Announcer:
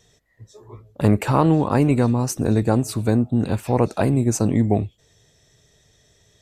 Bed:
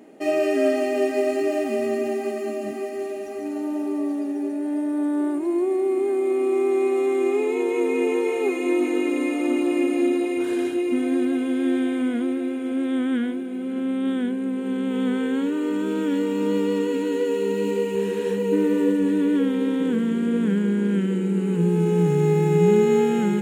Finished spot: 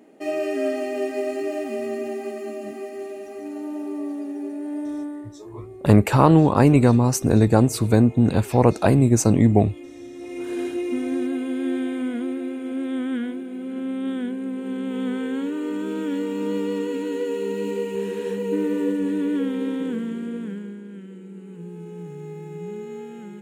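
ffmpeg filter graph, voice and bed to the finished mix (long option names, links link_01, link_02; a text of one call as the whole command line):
ffmpeg -i stem1.wav -i stem2.wav -filter_complex "[0:a]adelay=4850,volume=2.5dB[link_01];[1:a]volume=12dB,afade=type=out:start_time=4.9:duration=0.39:silence=0.177828,afade=type=in:start_time=10.13:duration=0.49:silence=0.158489,afade=type=out:start_time=19.69:duration=1.14:silence=0.199526[link_02];[link_01][link_02]amix=inputs=2:normalize=0" out.wav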